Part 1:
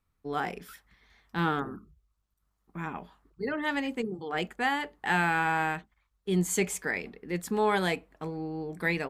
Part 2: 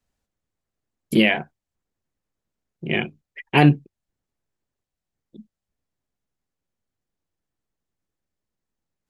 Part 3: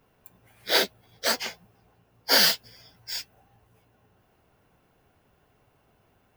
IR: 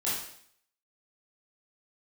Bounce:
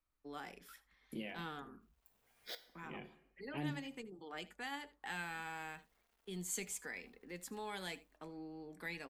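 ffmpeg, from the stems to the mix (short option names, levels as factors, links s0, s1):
-filter_complex "[0:a]volume=0.631,asplit=2[s0][s1];[s1]volume=0.1[s2];[1:a]equalizer=f=5000:w=0.37:g=-13.5,volume=0.251,asplit=3[s3][s4][s5];[s4]volume=0.133[s6];[2:a]acompressor=threshold=0.0316:ratio=3,acrusher=bits=9:mix=0:aa=0.000001,adelay=1800,volume=0.316,asplit=3[s7][s8][s9];[s7]atrim=end=2.55,asetpts=PTS-STARTPTS,afade=t=out:st=2.546:d=0.004:c=hsin[s10];[s8]atrim=start=2.55:end=5.15,asetpts=PTS-STARTPTS,volume=0[s11];[s9]atrim=start=5.15,asetpts=PTS-STARTPTS,afade=t=in:d=0.004:c=hsin[s12];[s10][s11][s12]concat=n=3:v=0:a=1,asplit=2[s13][s14];[s14]volume=0.112[s15];[s5]apad=whole_len=359908[s16];[s13][s16]sidechaincompress=threshold=0.00631:ratio=8:attack=16:release=895[s17];[3:a]atrim=start_sample=2205[s18];[s6][s15]amix=inputs=2:normalize=0[s19];[s19][s18]afir=irnorm=-1:irlink=0[s20];[s2]aecho=0:1:78:1[s21];[s0][s3][s17][s20][s21]amix=inputs=5:normalize=0,acrossover=split=210|3000[s22][s23][s24];[s23]acompressor=threshold=0.00501:ratio=2[s25];[s22][s25][s24]amix=inputs=3:normalize=0,equalizer=f=120:w=0.64:g=-10,flanger=delay=3.2:depth=1.2:regen=70:speed=0.24:shape=triangular"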